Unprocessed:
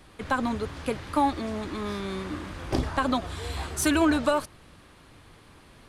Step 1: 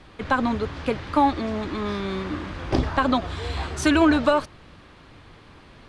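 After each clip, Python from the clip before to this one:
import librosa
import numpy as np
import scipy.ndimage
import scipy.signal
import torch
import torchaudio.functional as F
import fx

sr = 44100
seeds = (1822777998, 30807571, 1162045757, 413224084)

y = scipy.signal.sosfilt(scipy.signal.butter(2, 5000.0, 'lowpass', fs=sr, output='sos'), x)
y = F.gain(torch.from_numpy(y), 4.5).numpy()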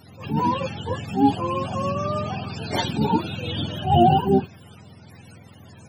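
y = fx.octave_mirror(x, sr, pivot_hz=480.0)
y = fx.attack_slew(y, sr, db_per_s=140.0)
y = F.gain(torch.from_numpy(y), 3.5).numpy()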